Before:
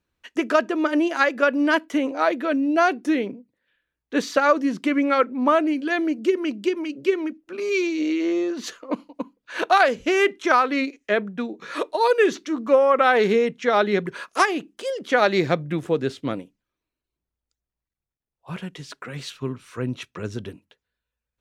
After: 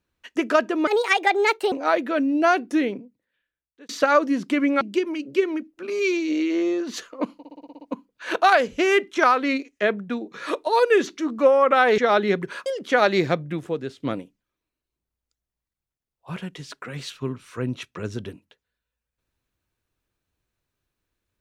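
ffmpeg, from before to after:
-filter_complex "[0:a]asplit=15[s0][s1][s2][s3][s4][s5][s6][s7][s8][s9][s10][s11][s12][s13][s14];[s0]atrim=end=0.874[s15];[s1]atrim=start=0.87:end=2.06,asetpts=PTS-STARTPTS,asetrate=61740,aresample=44100[s16];[s2]atrim=start=2.056:end=4.23,asetpts=PTS-STARTPTS,afade=t=out:st=1.114:d=1.06[s17];[s3]atrim=start=4.23:end=5.152,asetpts=PTS-STARTPTS,afade=t=in:d=0.004:c=hsin[s18];[s4]atrim=start=6.508:end=9.142[s19];[s5]atrim=start=9.078:end=9.142[s20];[s6]atrim=start=9.078:end=9.142[s21];[s7]atrim=start=9.078:end=9.142[s22];[s8]atrim=start=9.078:end=9.142[s23];[s9]atrim=start=9.078:end=9.142[s24];[s10]atrim=start=9.078:end=9.142[s25];[s11]atrim=start=9.078:end=13.262[s26];[s12]atrim=start=13.618:end=14.302[s27];[s13]atrim=start=14.858:end=16.2,asetpts=PTS-STARTPTS,afade=t=out:st=0.522:d=0.82:silence=0.354813[s28];[s14]atrim=start=16.2,asetpts=PTS-STARTPTS,afade=t=in:d=0.004:c=hsin:silence=0.354813[s29];[s15][s16]acrossfade=d=0.004:c1=hsin:c2=hsin[s30];[s17][s18]concat=n=2:v=0:a=1[s31];[s30][s31]acrossfade=d=0.004:c1=hsin:c2=hsin[s32];[s32][s19]acrossfade=d=0.004:c1=hsin:c2=hsin[s33];[s33][s20]acrossfade=d=0.004:c1=hsin:c2=hsin[s34];[s34][s21]acrossfade=d=0.004:c1=hsin:c2=hsin[s35];[s35][s22]acrossfade=d=0.004:c1=hsin:c2=hsin[s36];[s36][s23]acrossfade=d=0.004:c1=hsin:c2=hsin[s37];[s37][s24]acrossfade=d=0.004:c1=hsin:c2=hsin[s38];[s38][s25]acrossfade=d=0.004:c1=hsin:c2=hsin[s39];[s39][s26]acrossfade=d=0.004:c1=hsin:c2=hsin[s40];[s40][s27]acrossfade=d=0.004:c1=hsin:c2=hsin[s41];[s28][s29]concat=n=2:v=0:a=1[s42];[s41][s42]acrossfade=d=0.004:c1=hsin:c2=hsin"

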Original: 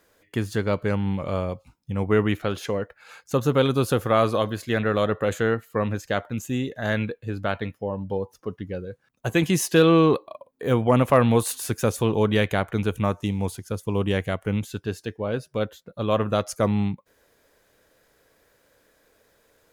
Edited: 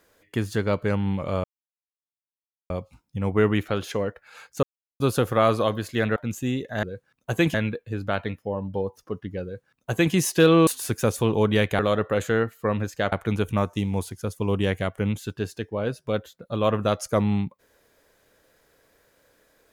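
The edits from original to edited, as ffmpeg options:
-filter_complex "[0:a]asplit=10[s0][s1][s2][s3][s4][s5][s6][s7][s8][s9];[s0]atrim=end=1.44,asetpts=PTS-STARTPTS,afade=t=out:st=1.436:d=0.004:c=hsin,apad=pad_dur=1.26[s10];[s1]atrim=start=1.44:end=3.37,asetpts=PTS-STARTPTS,afade=t=in:d=0.004:c=hsin,afade=t=out:st=1.926:d=0.004:c=hsin[s11];[s2]atrim=start=3.37:end=3.74,asetpts=PTS-STARTPTS,volume=0[s12];[s3]atrim=start=3.74:end=4.902,asetpts=PTS-STARTPTS,afade=t=in:d=0.004:c=hsin[s13];[s4]atrim=start=6.228:end=6.902[s14];[s5]atrim=start=8.788:end=9.502[s15];[s6]atrim=start=6.898:end=10.032[s16];[s7]atrim=start=11.468:end=12.592[s17];[s8]atrim=start=4.898:end=6.232[s18];[s9]atrim=start=12.588[s19];[s10][s11][s12][s13]concat=n=4:v=0:a=1[s20];[s20][s14]acrossfade=d=0.004:c1=hsin:c2=hsin[s21];[s21][s15]acrossfade=d=0.004:c1=hsin:c2=hsin[s22];[s22][s16]acrossfade=d=0.004:c1=hsin:c2=hsin[s23];[s23][s17]acrossfade=d=0.004:c1=hsin:c2=hsin[s24];[s24][s18]acrossfade=d=0.004:c1=hsin:c2=hsin[s25];[s25][s19]acrossfade=d=0.004:c1=hsin:c2=hsin"

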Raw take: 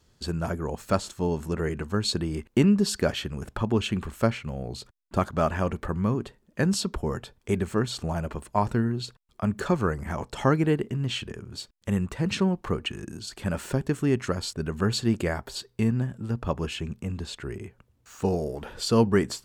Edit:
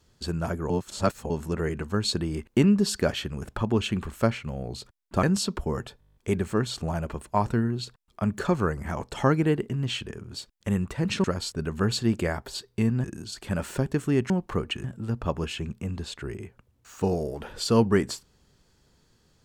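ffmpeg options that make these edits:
-filter_complex "[0:a]asplit=16[s0][s1][s2][s3][s4][s5][s6][s7][s8][s9][s10][s11][s12][s13][s14][s15];[s0]atrim=end=0.702[s16];[s1]atrim=start=0.698:end=1.302,asetpts=PTS-STARTPTS,areverse[s17];[s2]atrim=start=1.298:end=5.232[s18];[s3]atrim=start=6.598:end=7.392[s19];[s4]atrim=start=7.368:end=7.392[s20];[s5]atrim=start=7.368:end=7.392[s21];[s6]atrim=start=7.368:end=7.392[s22];[s7]atrim=start=7.368:end=7.392[s23];[s8]atrim=start=7.368:end=7.392[s24];[s9]atrim=start=7.368:end=7.392[s25];[s10]atrim=start=7.368:end=7.392[s26];[s11]atrim=start=7.368:end=12.452[s27];[s12]atrim=start=14.248:end=16.052[s28];[s13]atrim=start=12.988:end=14.252[s29];[s14]atrim=start=12.448:end=12.992[s30];[s15]atrim=start=16.048[s31];[s16][s17]acrossfade=d=0.004:c1=hsin:c2=hsin[s32];[s32][s18]acrossfade=d=0.004:c1=hsin:c2=hsin[s33];[s33][s19]acrossfade=d=0.004:c1=hsin:c2=hsin[s34];[s34][s20]acrossfade=d=0.004:c1=hsin:c2=hsin[s35];[s35][s21]acrossfade=d=0.004:c1=hsin:c2=hsin[s36];[s36][s22]acrossfade=d=0.004:c1=hsin:c2=hsin[s37];[s37][s23]acrossfade=d=0.004:c1=hsin:c2=hsin[s38];[s38][s24]acrossfade=d=0.004:c1=hsin:c2=hsin[s39];[s39][s25]acrossfade=d=0.004:c1=hsin:c2=hsin[s40];[s40][s26]acrossfade=d=0.004:c1=hsin:c2=hsin[s41];[s41][s27]acrossfade=d=0.004:c1=hsin:c2=hsin[s42];[s42][s28]acrossfade=d=0.004:c1=hsin:c2=hsin[s43];[s43][s29]acrossfade=d=0.004:c1=hsin:c2=hsin[s44];[s44][s30]acrossfade=d=0.004:c1=hsin:c2=hsin[s45];[s45][s31]acrossfade=d=0.004:c1=hsin:c2=hsin"

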